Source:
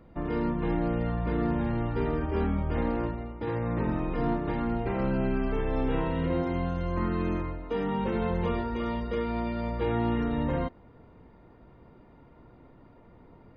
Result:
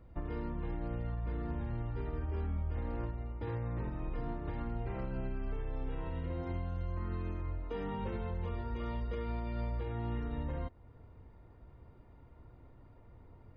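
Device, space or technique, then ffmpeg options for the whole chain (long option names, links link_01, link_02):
car stereo with a boomy subwoofer: -af "lowshelf=frequency=130:width_type=q:width=1.5:gain=8,alimiter=limit=-22dB:level=0:latency=1:release=273,volume=-7dB"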